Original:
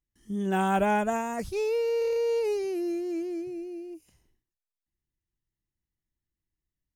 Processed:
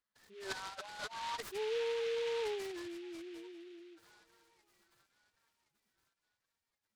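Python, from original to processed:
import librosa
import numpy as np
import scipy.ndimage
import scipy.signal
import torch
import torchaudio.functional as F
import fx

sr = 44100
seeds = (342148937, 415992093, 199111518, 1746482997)

p1 = fx.crossing_spikes(x, sr, level_db=-28.0, at=(1.9, 2.88))
p2 = scipy.signal.sosfilt(scipy.signal.butter(4, 680.0, 'highpass', fs=sr, output='sos'), p1)
p3 = fx.notch(p2, sr, hz=4500.0, q=12.0)
p4 = p3 + fx.echo_thinned(p3, sr, ms=1071, feedback_pct=39, hz=1100.0, wet_db=-19.0, dry=0)
p5 = fx.over_compress(p4, sr, threshold_db=-38.0, ratio=-1.0)
p6 = fx.sample_hold(p5, sr, seeds[0], rate_hz=6400.0, jitter_pct=0)
p7 = p5 + (p6 * librosa.db_to_amplitude(-4.5))
p8 = fx.spec_gate(p7, sr, threshold_db=-10, keep='strong')
p9 = fx.fixed_phaser(p8, sr, hz=2600.0, stages=6)
p10 = fx.noise_mod_delay(p9, sr, seeds[1], noise_hz=2500.0, depth_ms=0.091)
y = p10 * librosa.db_to_amplitude(3.5)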